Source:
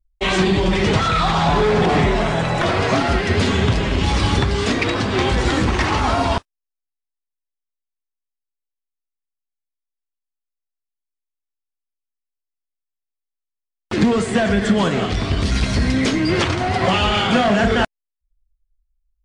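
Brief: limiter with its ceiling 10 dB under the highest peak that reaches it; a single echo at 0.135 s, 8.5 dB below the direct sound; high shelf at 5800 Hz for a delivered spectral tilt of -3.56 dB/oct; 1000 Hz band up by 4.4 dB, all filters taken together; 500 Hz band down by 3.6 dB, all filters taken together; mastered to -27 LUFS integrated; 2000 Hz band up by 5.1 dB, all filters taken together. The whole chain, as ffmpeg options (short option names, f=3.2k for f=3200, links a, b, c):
-af "equalizer=f=500:t=o:g=-7.5,equalizer=f=1k:t=o:g=7,equalizer=f=2k:t=o:g=5.5,highshelf=f=5.8k:g=-8,alimiter=limit=-12.5dB:level=0:latency=1,aecho=1:1:135:0.376,volume=-6.5dB"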